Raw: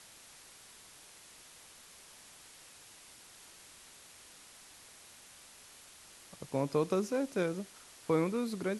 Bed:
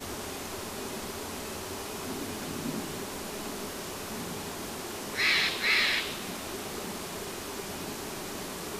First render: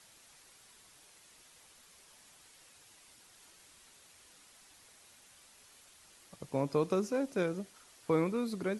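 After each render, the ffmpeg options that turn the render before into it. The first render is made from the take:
-af "afftdn=nr=6:nf=-56"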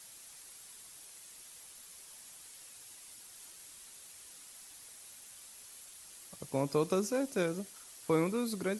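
-af "aemphasis=mode=production:type=50kf"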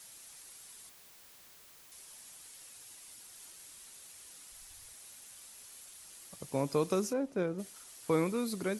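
-filter_complex "[0:a]asettb=1/sr,asplit=3[s0][s1][s2];[s0]atrim=end=0.894[s3];[s1]atrim=start=0.89:end=1.92,asetpts=PTS-STARTPTS,afade=t=in:d=0.004:c=qsin,afade=t=out:st=1.026:d=0.004:c=qsin,aeval=exprs='(mod(422*val(0)+1,2)-1)/422':c=same[s4];[s2]atrim=start=1.916[s5];[s3][s4]acrossfade=d=0.004:c1=hsin:c2=qsin[s6];[s6][s5]acrossfade=d=0.004:c1=qsin:c2=hsin,asplit=3[s7][s8][s9];[s7]afade=t=out:st=4.5:d=0.02[s10];[s8]asubboost=boost=7.5:cutoff=89,afade=t=in:st=4.5:d=0.02,afade=t=out:st=4.92:d=0.02[s11];[s9]afade=t=in:st=4.92:d=0.02[s12];[s10][s11][s12]amix=inputs=3:normalize=0,asplit=3[s13][s14][s15];[s13]afade=t=out:st=7.12:d=0.02[s16];[s14]lowpass=f=1100:p=1,afade=t=in:st=7.12:d=0.02,afade=t=out:st=7.58:d=0.02[s17];[s15]afade=t=in:st=7.58:d=0.02[s18];[s16][s17][s18]amix=inputs=3:normalize=0"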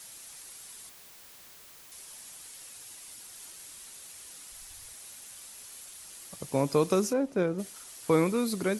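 -af "volume=1.88"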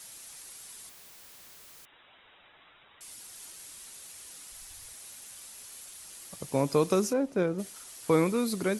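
-filter_complex "[0:a]asettb=1/sr,asplit=3[s0][s1][s2];[s0]atrim=end=1.854[s3];[s1]atrim=start=1.85:end=3.01,asetpts=PTS-STARTPTS,afade=t=in:d=0.004:c=qsin,afade=t=out:st=1.156:d=0.004:c=qsin,lowpass=f=3300:t=q:w=0.5098,lowpass=f=3300:t=q:w=0.6013,lowpass=f=3300:t=q:w=0.9,lowpass=f=3300:t=q:w=2.563,afreqshift=-3900[s4];[s2]atrim=start=3.006[s5];[s3][s4]acrossfade=d=0.004:c1=hsin:c2=qsin[s6];[s6][s5]acrossfade=d=0.004:c1=qsin:c2=hsin"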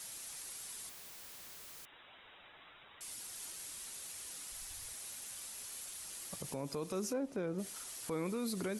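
-af "acompressor=threshold=0.0251:ratio=4,alimiter=level_in=1.88:limit=0.0631:level=0:latency=1:release=35,volume=0.531"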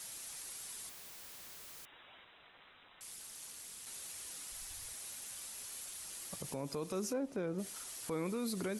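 -filter_complex "[0:a]asplit=3[s0][s1][s2];[s0]afade=t=out:st=2.24:d=0.02[s3];[s1]aeval=exprs='val(0)*sin(2*PI*120*n/s)':c=same,afade=t=in:st=2.24:d=0.02,afade=t=out:st=3.85:d=0.02[s4];[s2]afade=t=in:st=3.85:d=0.02[s5];[s3][s4][s5]amix=inputs=3:normalize=0"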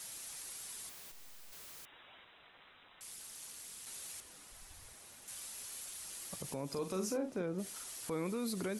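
-filter_complex "[0:a]asplit=3[s0][s1][s2];[s0]afade=t=out:st=1.11:d=0.02[s3];[s1]aeval=exprs='abs(val(0))':c=same,afade=t=in:st=1.11:d=0.02,afade=t=out:st=1.51:d=0.02[s4];[s2]afade=t=in:st=1.51:d=0.02[s5];[s3][s4][s5]amix=inputs=3:normalize=0,asettb=1/sr,asplit=3[s6][s7][s8];[s6]atrim=end=4.204[s9];[s7]atrim=start=4.2:end=5.28,asetpts=PTS-STARTPTS,afade=t=in:d=0.004:c=qsin,afade=t=out:st=1.076:d=0.004:c=qsin,highshelf=f=2200:g=-10[s10];[s8]atrim=start=5.276[s11];[s9][s10]acrossfade=d=0.004:c1=hsin:c2=qsin[s12];[s12][s11]acrossfade=d=0.004:c1=qsin:c2=hsin,asettb=1/sr,asplit=3[s13][s14][s15];[s13]atrim=end=6.694[s16];[s14]atrim=start=6.69:end=7.42,asetpts=PTS-STARTPTS,afade=t=in:d=0.004:c=qsin,afade=t=out:st=0.726:d=0.004:c=qsin,asplit=2[s17][s18];[s18]adelay=42,volume=0.473[s19];[s17][s19]amix=inputs=2:normalize=0,atrim=end_sample=32193[s20];[s15]atrim=start=7.416[s21];[s16][s20]acrossfade=d=0.004:c1=hsin:c2=qsin[s22];[s22][s21]acrossfade=d=0.004:c1=qsin:c2=hsin"

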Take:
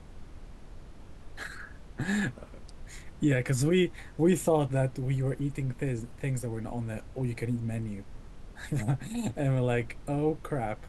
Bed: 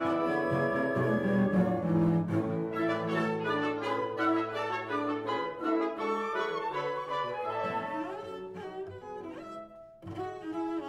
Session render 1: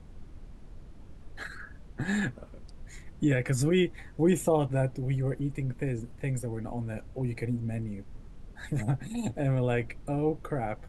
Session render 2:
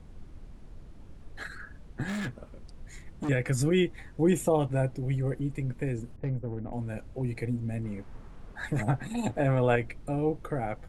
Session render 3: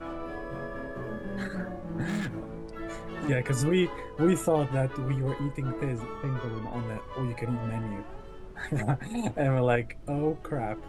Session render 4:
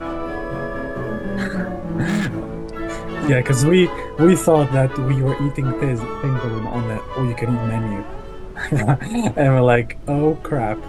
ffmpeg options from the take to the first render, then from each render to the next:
-af "afftdn=nr=6:nf=-49"
-filter_complex "[0:a]asettb=1/sr,asplit=3[s0][s1][s2];[s0]atrim=end=2.084[s3];[s1]atrim=start=2.08:end=3.29,asetpts=PTS-STARTPTS,afade=t=in:d=0.004:c=qsin,afade=t=out:st=1.206:d=0.004:c=qsin,volume=33.5,asoftclip=hard,volume=0.0299[s4];[s2]atrim=start=3.286[s5];[s3][s4]acrossfade=d=0.004:c1=hsin:c2=qsin[s6];[s6][s5]acrossfade=d=0.004:c1=qsin:c2=hsin,asettb=1/sr,asplit=3[s7][s8][s9];[s7]atrim=end=6.164[s10];[s8]atrim=start=6.16:end=6.73,asetpts=PTS-STARTPTS,afade=t=in:d=0.004:c=qsin,afade=t=out:st=0.566:d=0.004:c=qsin,adynamicsmooth=sensitivity=1.5:basefreq=710[s11];[s9]atrim=start=6.726[s12];[s10][s11]acrossfade=d=0.004:c1=hsin:c2=qsin[s13];[s13][s12]acrossfade=d=0.004:c1=qsin:c2=hsin,asettb=1/sr,asplit=3[s14][s15][s16];[s14]atrim=end=7.844[s17];[s15]atrim=start=7.84:end=9.76,asetpts=PTS-STARTPTS,afade=t=in:d=0.004:c=qsin,afade=t=out:st=1.916:d=0.004:c=qsin,equalizer=f=1100:w=0.56:g=9[s18];[s16]atrim=start=9.756[s19];[s17][s18]acrossfade=d=0.004:c1=hsin:c2=qsin[s20];[s20][s19]acrossfade=d=0.004:c1=qsin:c2=hsin"
-filter_complex "[1:a]volume=0.376[s0];[0:a][s0]amix=inputs=2:normalize=0"
-af "volume=3.55,alimiter=limit=0.891:level=0:latency=1"

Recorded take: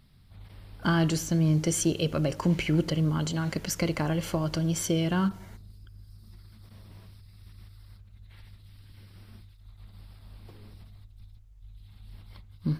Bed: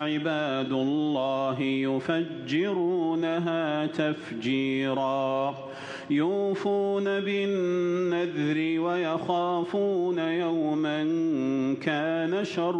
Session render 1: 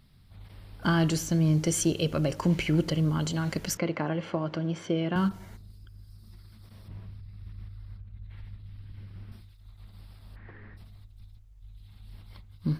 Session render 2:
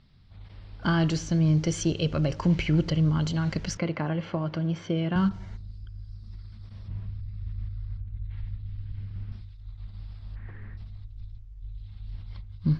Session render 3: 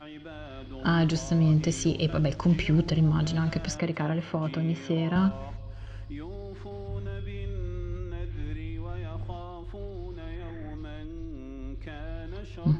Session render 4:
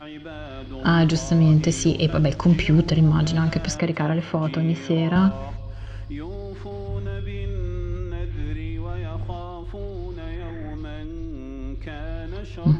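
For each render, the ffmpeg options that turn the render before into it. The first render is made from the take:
-filter_complex "[0:a]asettb=1/sr,asplit=3[s0][s1][s2];[s0]atrim=end=3.774[s3];[s1]atrim=start=3.77:end=5.16,asetpts=PTS-STARTPTS,afade=t=in:d=0.004:c=qsin,afade=t=out:st=1.386:d=0.004:c=qsin,highpass=180,lowpass=2500[s4];[s2]atrim=start=5.156[s5];[s3][s4]acrossfade=d=0.004:c1=hsin:c2=qsin[s6];[s6][s5]acrossfade=d=0.004:c1=qsin:c2=hsin,asettb=1/sr,asplit=3[s7][s8][s9];[s7]atrim=end=6.884[s10];[s8]atrim=start=6.88:end=9.32,asetpts=PTS-STARTPTS,afade=t=in:d=0.004:c=qsin,afade=t=out:st=2.436:d=0.004:c=qsin,bass=f=250:g=7,treble=f=4000:g=-12[s11];[s9]atrim=start=9.316[s12];[s10][s11]acrossfade=d=0.004:c1=hsin:c2=qsin[s13];[s13][s12]acrossfade=d=0.004:c1=qsin:c2=hsin,asplit=3[s14][s15][s16];[s14]afade=t=out:st=10.35:d=0.02[s17];[s15]lowpass=f=1800:t=q:w=9.3,afade=t=in:st=10.35:d=0.02,afade=t=out:st=10.76:d=0.02[s18];[s16]afade=t=in:st=10.76:d=0.02[s19];[s17][s18][s19]amix=inputs=3:normalize=0"
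-af "lowpass=f=6000:w=0.5412,lowpass=f=6000:w=1.3066,asubboost=boost=2.5:cutoff=180"
-filter_complex "[1:a]volume=0.158[s0];[0:a][s0]amix=inputs=2:normalize=0"
-af "volume=2"

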